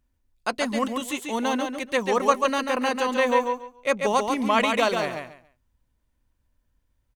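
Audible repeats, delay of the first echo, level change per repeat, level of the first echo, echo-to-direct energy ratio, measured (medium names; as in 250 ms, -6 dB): 3, 140 ms, -13.5 dB, -5.0 dB, -5.0 dB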